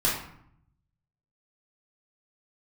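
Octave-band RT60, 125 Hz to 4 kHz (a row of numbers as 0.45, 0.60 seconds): 1.3, 0.95, 0.65, 0.70, 0.60, 0.45 seconds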